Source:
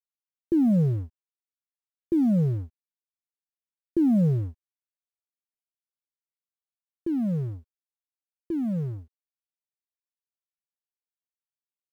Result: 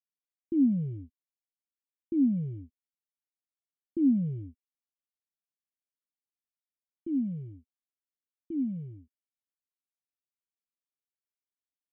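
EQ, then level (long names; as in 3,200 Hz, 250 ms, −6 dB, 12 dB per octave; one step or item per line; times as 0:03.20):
formant resonators in series i
high-frequency loss of the air 69 metres
0.0 dB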